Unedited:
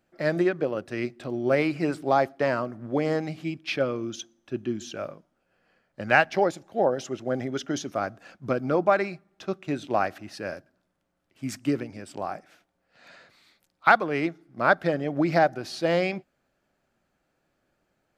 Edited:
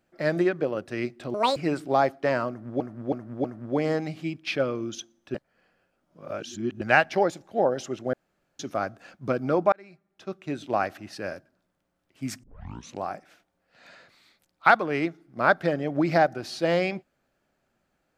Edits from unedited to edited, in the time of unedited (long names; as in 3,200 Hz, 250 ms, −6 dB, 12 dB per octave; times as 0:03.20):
0:01.34–0:01.73: play speed 175%
0:02.65–0:02.97: repeat, 4 plays
0:04.55–0:06.02: reverse
0:07.34–0:07.80: fill with room tone
0:08.93–0:10.40: fade in equal-power
0:11.64: tape start 0.57 s